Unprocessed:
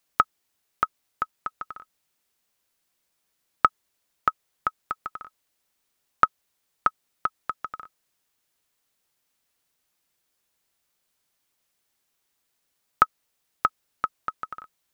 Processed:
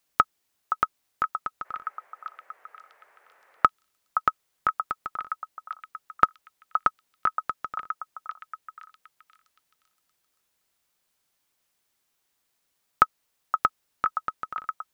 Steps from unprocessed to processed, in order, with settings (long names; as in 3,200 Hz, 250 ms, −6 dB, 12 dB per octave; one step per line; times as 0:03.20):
echo through a band-pass that steps 520 ms, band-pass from 950 Hz, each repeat 0.7 octaves, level −5.5 dB
0:01.64–0:03.65: noise in a band 440–2,000 Hz −61 dBFS